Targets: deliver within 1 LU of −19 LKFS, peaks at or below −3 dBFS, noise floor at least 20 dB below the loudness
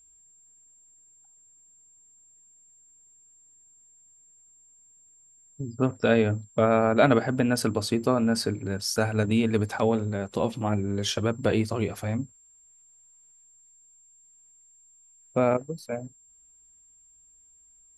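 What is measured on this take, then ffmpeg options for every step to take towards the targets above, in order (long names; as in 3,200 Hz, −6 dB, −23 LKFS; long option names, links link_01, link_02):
interfering tone 7,400 Hz; level of the tone −55 dBFS; integrated loudness −26.0 LKFS; sample peak −6.0 dBFS; target loudness −19.0 LKFS
→ -af "bandreject=frequency=7400:width=30"
-af "volume=7dB,alimiter=limit=-3dB:level=0:latency=1"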